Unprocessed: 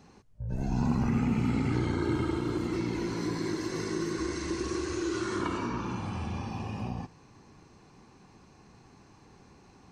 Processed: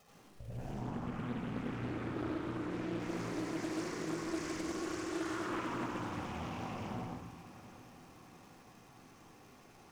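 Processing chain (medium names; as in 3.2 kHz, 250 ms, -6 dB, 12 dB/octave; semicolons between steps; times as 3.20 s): companding laws mixed up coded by A; compression 4:1, threshold -42 dBFS, peak gain reduction 16 dB; tone controls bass -11 dB, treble +1 dB; band-stop 4.2 kHz, Q 5.1; crackle 420 per s -56 dBFS; 0.71–3.00 s: treble shelf 6.8 kHz -11 dB; echo that smears into a reverb 769 ms, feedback 44%, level -15 dB; reverberation RT60 0.70 s, pre-delay 73 ms, DRR -3.5 dB; loudspeaker Doppler distortion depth 0.6 ms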